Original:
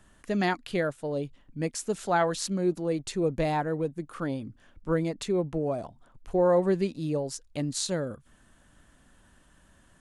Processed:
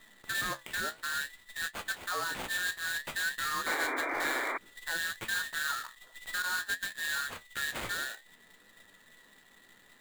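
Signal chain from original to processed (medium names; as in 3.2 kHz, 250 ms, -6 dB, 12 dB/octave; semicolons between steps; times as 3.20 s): every band turned upside down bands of 2 kHz; 6.42–6.83 s: gate -22 dBFS, range -20 dB; in parallel at -2 dB: compression, threshold -38 dBFS, peak gain reduction 17.5 dB; on the sum: peak limiter -19.5 dBFS, peak gain reduction 7 dB; sample-rate reducer 5.6 kHz, jitter 20%; flange 0.57 Hz, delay 8.7 ms, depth 9.4 ms, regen +60%; 3.66–4.58 s: painted sound noise 250–2400 Hz -32 dBFS; trim -2 dB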